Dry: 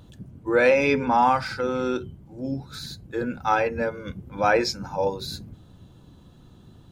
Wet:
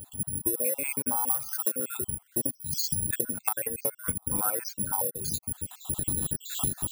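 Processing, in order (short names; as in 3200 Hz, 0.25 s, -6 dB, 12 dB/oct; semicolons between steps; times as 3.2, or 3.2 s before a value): random spectral dropouts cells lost 57%; recorder AGC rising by 22 dB/s; 4.36–5.07 bell 1400 Hz +11.5 dB 0.24 oct; careless resampling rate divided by 4×, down filtered, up zero stuff; 0.36–0.61 spectral gain 530–8200 Hz -15 dB; 1.26–1.71 high shelf 5000 Hz -> 9500 Hz +9.5 dB; 2.49–2.94 Chebyshev band-stop 240–3800 Hz, order 3; compressor 5:1, threshold -25 dBFS, peak gain reduction 20 dB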